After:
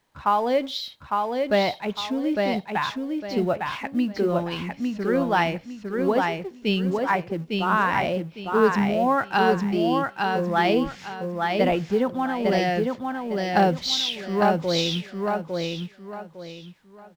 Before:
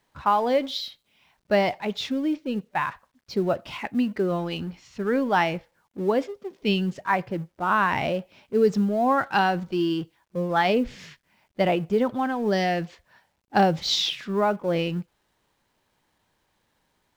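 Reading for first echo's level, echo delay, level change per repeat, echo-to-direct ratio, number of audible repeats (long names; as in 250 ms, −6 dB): −3.5 dB, 855 ms, −11.0 dB, −3.0 dB, 3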